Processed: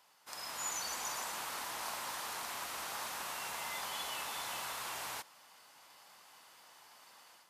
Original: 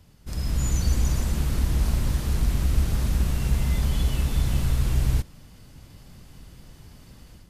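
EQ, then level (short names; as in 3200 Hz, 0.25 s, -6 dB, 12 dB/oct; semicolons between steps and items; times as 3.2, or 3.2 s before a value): resonant high-pass 910 Hz, resonance Q 2; -3.5 dB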